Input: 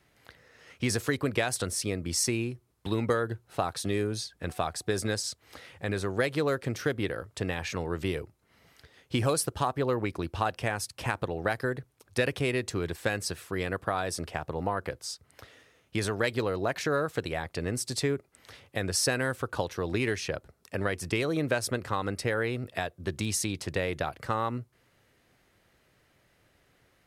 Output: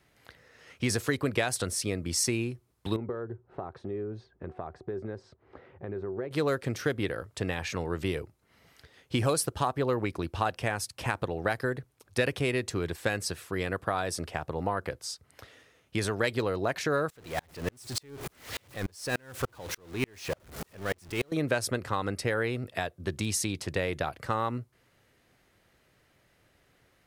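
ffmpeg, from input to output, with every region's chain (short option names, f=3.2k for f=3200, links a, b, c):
-filter_complex "[0:a]asettb=1/sr,asplit=3[a][b][c];[a]atrim=end=2.964[d];[b]atrim=start=2.96:end=6.31,asetpts=PTS-STARTPTS,afade=t=in:d=0.004:c=qsin,afade=t=out:st=3.346:d=0.004:c=qsin,lowpass=1.1k,equalizer=f=380:w=7.9:g=11.5,acompressor=threshold=-38dB:ratio=2:attack=3.2:release=140:knee=1:detection=peak[e];[c]atrim=start=6.306[f];[d][e]acrossfade=d=0.004:c1=hsin:c2=qsin[g];[g][f]acrossfade=d=0.004:c1=qsin:c2=hsin,asettb=1/sr,asplit=3[h][i][j];[h]atrim=end=17.104[k];[i]atrim=start=17.1:end=21.32,asetpts=PTS-STARTPTS,afade=t=in:d=0.004:c=qsin,afade=t=out:st=4.216:d=0.004:c=qsin,aeval=exprs='val(0)+0.5*0.0422*sgn(val(0))':c=same,aeval=exprs='val(0)*pow(10,-38*if(lt(mod(-3.4*n/s,1),2*abs(-3.4)/1000),1-mod(-3.4*n/s,1)/(2*abs(-3.4)/1000),(mod(-3.4*n/s,1)-2*abs(-3.4)/1000)/(1-2*abs(-3.4)/1000))/20)':c=same[l];[j]atrim=start=21.316[m];[k][l]acrossfade=d=0.004:c1=hsin:c2=qsin[n];[n][m]acrossfade=d=0.004:c1=qsin:c2=hsin"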